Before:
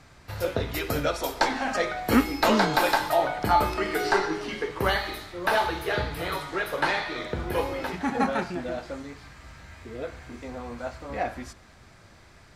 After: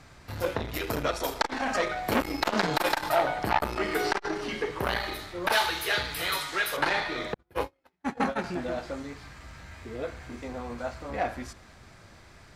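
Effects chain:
0:05.52–0:06.77: tilt shelving filter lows −8.5 dB, about 1,300 Hz
0:07.34–0:08.44: noise gate −25 dBFS, range −47 dB
saturating transformer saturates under 1,500 Hz
level +1 dB

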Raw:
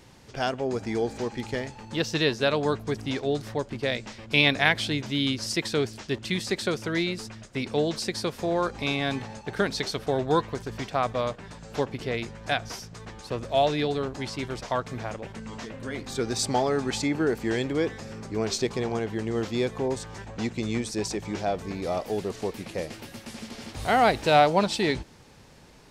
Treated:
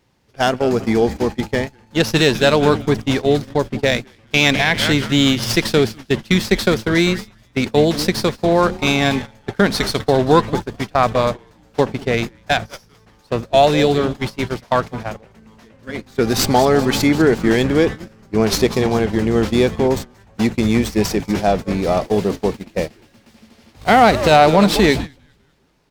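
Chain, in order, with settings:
dynamic equaliser 200 Hz, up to +5 dB, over −45 dBFS, Q 3.7
echo with shifted repeats 199 ms, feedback 45%, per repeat −150 Hz, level −13 dB
noise gate −31 dBFS, range −20 dB
boost into a limiter +12 dB
windowed peak hold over 3 samples
level −1 dB

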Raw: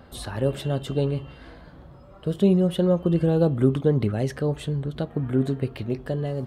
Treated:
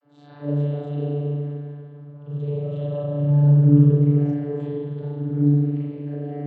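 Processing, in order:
every overlapping window played backwards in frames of 89 ms
spring reverb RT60 2.2 s, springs 33/51 ms, chirp 50 ms, DRR −9.5 dB
channel vocoder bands 32, saw 145 Hz
level −4 dB

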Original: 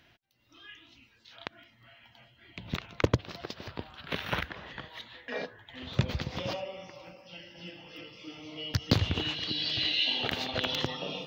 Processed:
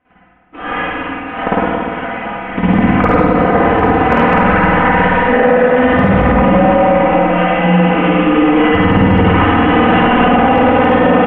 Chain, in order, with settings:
variable-slope delta modulation 16 kbit/s
noise gate −59 dBFS, range −29 dB
low-pass filter 1,300 Hz 12 dB per octave
low-shelf EQ 80 Hz −10 dB
comb filter 4 ms, depth 79%
downward compressor 5 to 1, threshold −36 dBFS, peak gain reduction 14.5 dB
hard clipping −28 dBFS, distortion −23 dB
on a send: ambience of single reflections 50 ms −5 dB, 72 ms −5.5 dB
on the sum: spring reverb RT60 2.3 s, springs 51/56 ms, chirp 55 ms, DRR −8.5 dB
boost into a limiter +28 dB
level −1 dB

